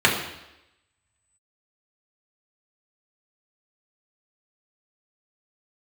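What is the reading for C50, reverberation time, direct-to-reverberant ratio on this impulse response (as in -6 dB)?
6.0 dB, 0.90 s, -3.5 dB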